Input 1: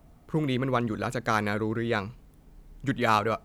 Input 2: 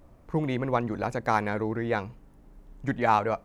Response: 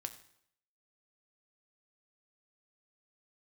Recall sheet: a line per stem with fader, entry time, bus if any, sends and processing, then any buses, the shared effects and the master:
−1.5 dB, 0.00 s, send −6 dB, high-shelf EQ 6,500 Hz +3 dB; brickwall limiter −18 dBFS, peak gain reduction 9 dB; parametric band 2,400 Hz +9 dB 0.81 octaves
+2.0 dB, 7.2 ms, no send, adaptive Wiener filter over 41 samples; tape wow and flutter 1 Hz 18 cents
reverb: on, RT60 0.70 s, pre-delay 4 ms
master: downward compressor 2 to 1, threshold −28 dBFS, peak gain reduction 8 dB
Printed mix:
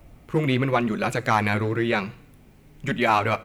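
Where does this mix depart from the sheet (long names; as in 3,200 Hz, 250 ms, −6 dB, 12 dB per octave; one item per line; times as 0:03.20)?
stem 1: send −6 dB → 0 dB
master: missing downward compressor 2 to 1, threshold −28 dBFS, peak gain reduction 8 dB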